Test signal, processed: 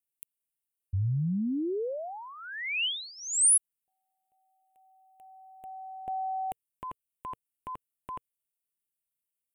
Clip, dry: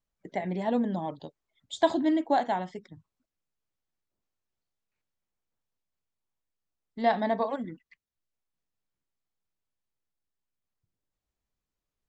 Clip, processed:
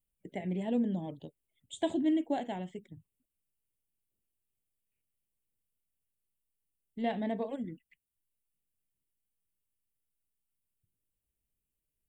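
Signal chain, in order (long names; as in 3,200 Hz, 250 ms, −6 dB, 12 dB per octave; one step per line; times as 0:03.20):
drawn EQ curve 110 Hz 0 dB, 460 Hz −4 dB, 1,200 Hz −19 dB, 2,900 Hz 0 dB, 5,000 Hz −23 dB, 8,700 Hz +7 dB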